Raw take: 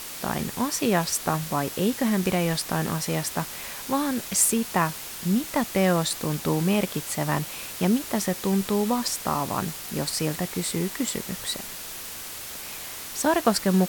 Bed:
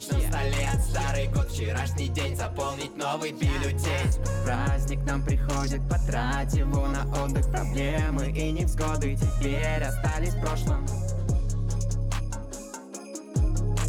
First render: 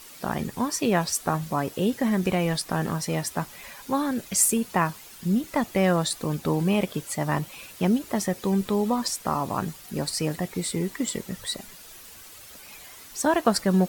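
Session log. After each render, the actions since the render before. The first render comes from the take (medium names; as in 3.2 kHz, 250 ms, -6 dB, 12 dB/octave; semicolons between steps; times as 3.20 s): noise reduction 11 dB, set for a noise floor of -37 dBFS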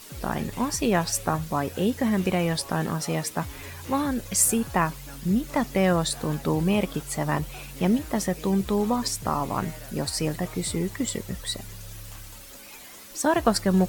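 add bed -15 dB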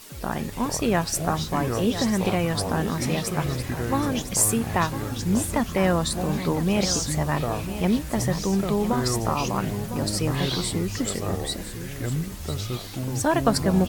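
delay 1006 ms -11 dB; ever faster or slower copies 297 ms, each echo -7 st, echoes 3, each echo -6 dB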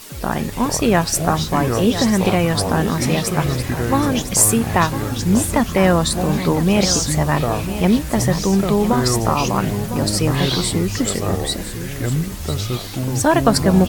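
trim +7 dB; peak limiter -1 dBFS, peak gain reduction 1 dB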